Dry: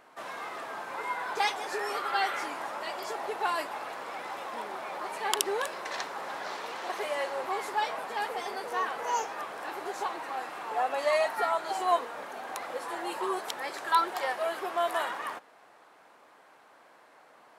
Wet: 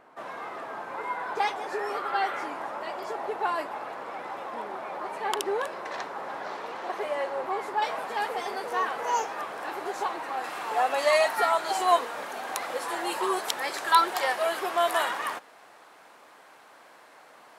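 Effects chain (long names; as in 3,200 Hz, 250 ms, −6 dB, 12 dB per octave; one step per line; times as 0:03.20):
high-shelf EQ 2,300 Hz −11.5 dB, from 0:07.82 −2.5 dB, from 0:10.44 +5 dB
level +3.5 dB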